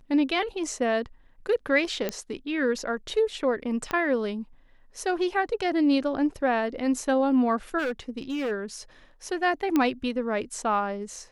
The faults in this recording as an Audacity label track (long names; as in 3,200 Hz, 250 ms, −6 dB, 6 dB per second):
2.090000	2.090000	click −13 dBFS
3.910000	3.910000	click −15 dBFS
7.780000	8.520000	clipping −25 dBFS
9.760000	9.760000	click −11 dBFS